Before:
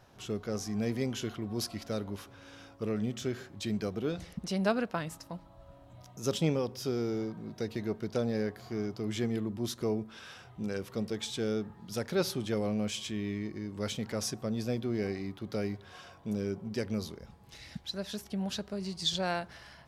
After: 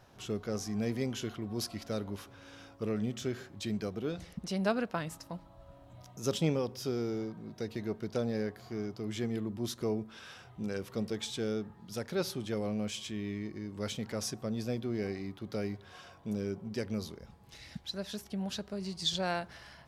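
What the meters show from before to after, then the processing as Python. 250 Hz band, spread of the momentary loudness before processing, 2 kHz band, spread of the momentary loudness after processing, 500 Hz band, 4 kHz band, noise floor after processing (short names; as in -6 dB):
-1.5 dB, 13 LU, -1.5 dB, 13 LU, -1.5 dB, -1.5 dB, -56 dBFS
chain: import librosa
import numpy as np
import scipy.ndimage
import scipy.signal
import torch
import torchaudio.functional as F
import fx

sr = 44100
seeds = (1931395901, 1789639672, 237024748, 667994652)

y = fx.rider(x, sr, range_db=5, speed_s=2.0)
y = y * librosa.db_to_amplitude(-2.5)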